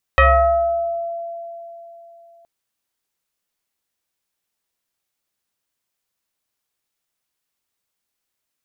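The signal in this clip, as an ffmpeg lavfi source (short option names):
-f lavfi -i "aevalsrc='0.422*pow(10,-3*t/3.41)*sin(2*PI*678*t+2.8*pow(10,-3*t/1.2)*sin(2*PI*0.9*678*t))':d=2.27:s=44100"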